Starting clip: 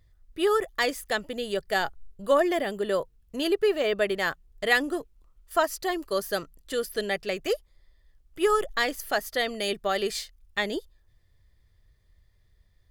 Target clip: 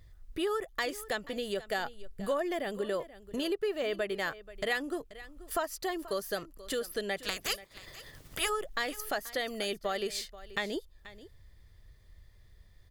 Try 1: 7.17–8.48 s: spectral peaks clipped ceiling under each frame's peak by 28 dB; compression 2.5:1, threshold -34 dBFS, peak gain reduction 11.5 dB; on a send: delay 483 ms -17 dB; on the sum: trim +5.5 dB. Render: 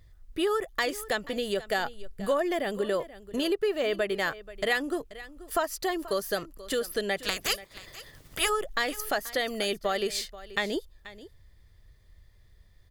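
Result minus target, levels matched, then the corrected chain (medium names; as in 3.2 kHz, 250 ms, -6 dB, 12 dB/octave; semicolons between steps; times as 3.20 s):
compression: peak gain reduction -5 dB
7.17–8.48 s: spectral peaks clipped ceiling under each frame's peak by 28 dB; compression 2.5:1, threshold -42 dBFS, peak gain reduction 16.5 dB; on a send: delay 483 ms -17 dB; on the sum: trim +5.5 dB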